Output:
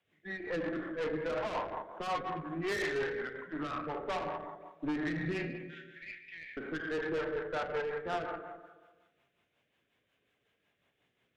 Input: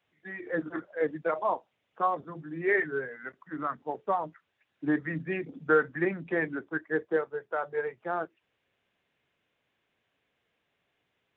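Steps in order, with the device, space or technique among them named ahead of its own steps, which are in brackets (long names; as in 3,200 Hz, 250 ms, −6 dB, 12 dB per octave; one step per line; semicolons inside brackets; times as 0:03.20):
0:05.55–0:06.57: Butterworth high-pass 2,200 Hz 48 dB per octave
four-comb reverb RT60 1.3 s, combs from 30 ms, DRR 2 dB
overdriven rotary cabinet (tube saturation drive 31 dB, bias 0.45; rotating-speaker cabinet horn 5.5 Hz)
level +2.5 dB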